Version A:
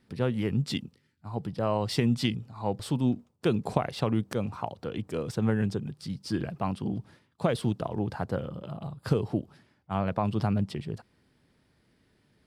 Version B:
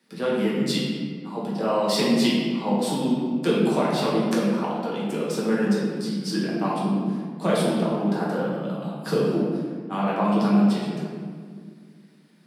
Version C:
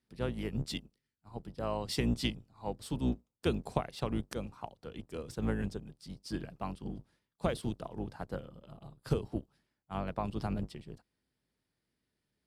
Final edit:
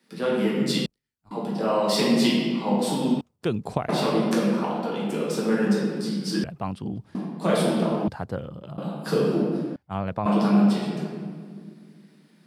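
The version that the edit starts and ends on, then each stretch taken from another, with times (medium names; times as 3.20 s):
B
0.86–1.31 s: from C
3.21–3.89 s: from A
6.44–7.15 s: from A
8.08–8.78 s: from A
9.76–10.26 s: from A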